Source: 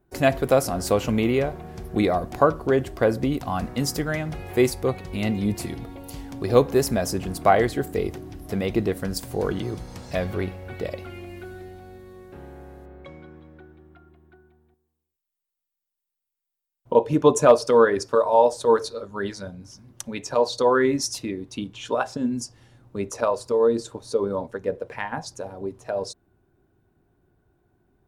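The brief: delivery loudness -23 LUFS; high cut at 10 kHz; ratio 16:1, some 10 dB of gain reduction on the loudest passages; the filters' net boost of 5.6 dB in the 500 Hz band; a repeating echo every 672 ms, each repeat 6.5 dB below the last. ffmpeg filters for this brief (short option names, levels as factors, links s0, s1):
-af "lowpass=10000,equalizer=f=500:t=o:g=6.5,acompressor=threshold=0.2:ratio=16,aecho=1:1:672|1344|2016|2688|3360|4032:0.473|0.222|0.105|0.0491|0.0231|0.0109"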